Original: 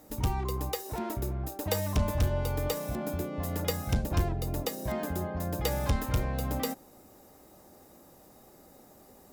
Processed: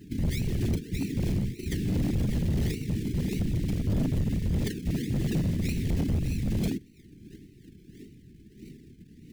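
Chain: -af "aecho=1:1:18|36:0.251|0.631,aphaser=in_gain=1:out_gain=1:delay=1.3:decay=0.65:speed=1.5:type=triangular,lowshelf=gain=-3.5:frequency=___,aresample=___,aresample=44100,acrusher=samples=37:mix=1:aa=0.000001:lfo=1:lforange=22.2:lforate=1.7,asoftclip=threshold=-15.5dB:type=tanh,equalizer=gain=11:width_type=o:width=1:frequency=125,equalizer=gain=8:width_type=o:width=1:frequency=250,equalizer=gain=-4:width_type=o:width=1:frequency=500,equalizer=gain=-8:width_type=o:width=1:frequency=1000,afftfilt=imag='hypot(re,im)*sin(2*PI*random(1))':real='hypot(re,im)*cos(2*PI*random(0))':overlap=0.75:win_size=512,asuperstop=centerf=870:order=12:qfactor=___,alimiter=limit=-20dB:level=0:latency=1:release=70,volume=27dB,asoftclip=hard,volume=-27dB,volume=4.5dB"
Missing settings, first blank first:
480, 16000, 0.69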